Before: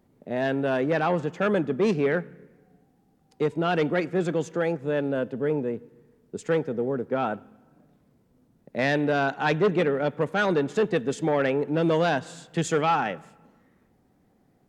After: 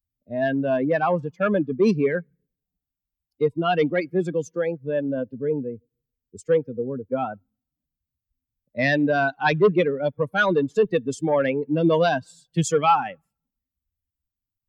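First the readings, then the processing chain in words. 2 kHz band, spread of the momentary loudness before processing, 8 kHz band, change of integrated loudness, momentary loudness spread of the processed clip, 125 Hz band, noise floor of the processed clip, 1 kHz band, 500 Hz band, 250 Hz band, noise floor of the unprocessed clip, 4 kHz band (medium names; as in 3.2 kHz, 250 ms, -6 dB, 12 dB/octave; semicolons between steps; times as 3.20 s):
+2.5 dB, 8 LU, no reading, +2.5 dB, 10 LU, +1.5 dB, under -85 dBFS, +3.0 dB, +2.5 dB, +2.0 dB, -64 dBFS, +1.5 dB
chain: expander on every frequency bin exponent 2; trim +7.5 dB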